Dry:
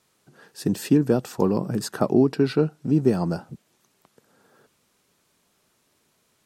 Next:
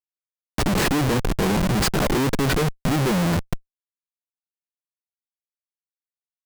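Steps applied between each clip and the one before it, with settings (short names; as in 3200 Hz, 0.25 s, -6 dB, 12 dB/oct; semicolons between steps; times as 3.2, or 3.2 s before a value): Schmitt trigger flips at -31.5 dBFS; upward compressor, threshold -30 dBFS; gain +5.5 dB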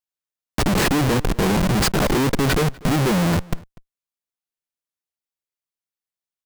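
outdoor echo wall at 42 m, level -23 dB; gain +2 dB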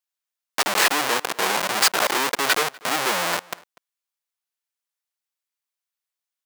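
HPF 780 Hz 12 dB/oct; gain +4 dB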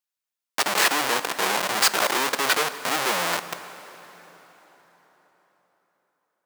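plate-style reverb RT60 4.5 s, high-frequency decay 0.75×, DRR 12 dB; gain -1.5 dB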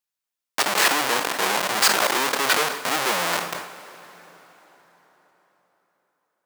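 sustainer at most 78 dB/s; gain +1 dB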